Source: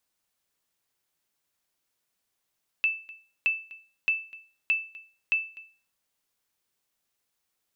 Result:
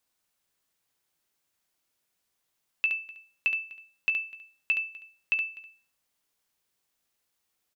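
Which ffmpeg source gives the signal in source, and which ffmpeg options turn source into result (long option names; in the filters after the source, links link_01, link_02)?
-f lavfi -i "aevalsrc='0.141*(sin(2*PI*2640*mod(t,0.62))*exp(-6.91*mod(t,0.62)/0.38)+0.0891*sin(2*PI*2640*max(mod(t,0.62)-0.25,0))*exp(-6.91*max(mod(t,0.62)-0.25,0)/0.38))':duration=3.1:sample_rate=44100"
-af "aecho=1:1:18|70:0.211|0.473"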